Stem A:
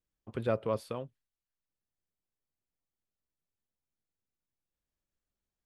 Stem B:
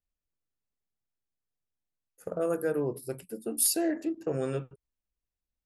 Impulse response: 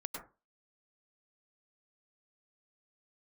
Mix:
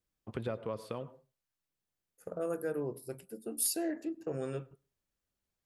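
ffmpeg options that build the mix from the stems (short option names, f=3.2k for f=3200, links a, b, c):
-filter_complex "[0:a]acompressor=threshold=-36dB:ratio=6,highpass=54,volume=1dB,asplit=2[a][b];[b]volume=-11.5dB[c];[1:a]volume=-6.5dB,asplit=2[d][e];[e]volume=-23dB[f];[2:a]atrim=start_sample=2205[g];[c][f]amix=inputs=2:normalize=0[h];[h][g]afir=irnorm=-1:irlink=0[i];[a][d][i]amix=inputs=3:normalize=0"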